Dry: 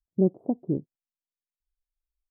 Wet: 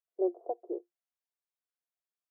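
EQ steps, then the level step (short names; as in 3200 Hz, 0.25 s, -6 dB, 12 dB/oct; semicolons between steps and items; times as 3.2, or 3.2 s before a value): rippled Chebyshev high-pass 340 Hz, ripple 6 dB; bell 700 Hz +12.5 dB 0.25 oct; 0.0 dB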